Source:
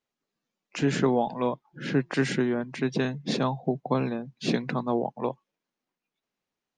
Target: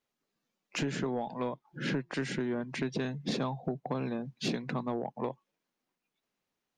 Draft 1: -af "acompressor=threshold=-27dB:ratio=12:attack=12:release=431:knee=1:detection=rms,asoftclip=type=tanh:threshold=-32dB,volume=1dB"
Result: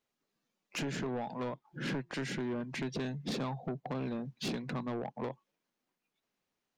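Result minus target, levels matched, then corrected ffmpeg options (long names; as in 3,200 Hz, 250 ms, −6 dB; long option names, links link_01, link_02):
soft clipping: distortion +10 dB
-af "acompressor=threshold=-27dB:ratio=12:attack=12:release=431:knee=1:detection=rms,asoftclip=type=tanh:threshold=-23dB,volume=1dB"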